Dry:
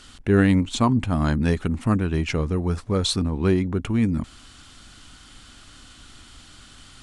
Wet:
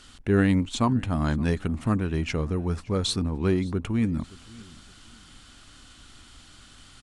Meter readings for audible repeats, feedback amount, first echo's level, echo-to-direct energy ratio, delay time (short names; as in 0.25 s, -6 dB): 2, 30%, -22.5 dB, -22.0 dB, 0.571 s